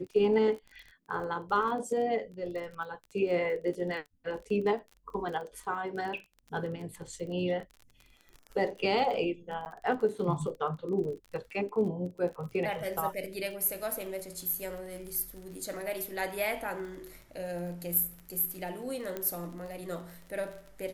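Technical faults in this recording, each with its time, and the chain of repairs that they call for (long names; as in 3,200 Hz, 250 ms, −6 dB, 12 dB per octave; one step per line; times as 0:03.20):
surface crackle 26 per second −39 dBFS
0:09.65–0:09.66: drop-out 9.4 ms
0:19.17: click −21 dBFS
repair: click removal
repair the gap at 0:09.65, 9.4 ms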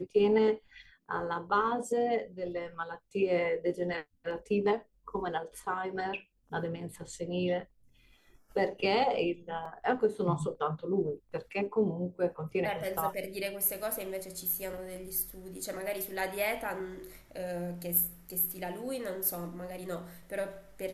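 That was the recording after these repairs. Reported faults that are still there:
0:19.17: click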